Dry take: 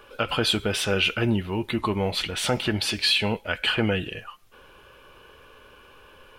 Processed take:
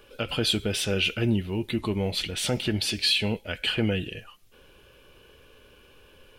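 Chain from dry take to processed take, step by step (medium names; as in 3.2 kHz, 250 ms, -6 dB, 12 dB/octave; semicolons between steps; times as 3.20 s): peaking EQ 1.1 kHz -11 dB 1.5 oct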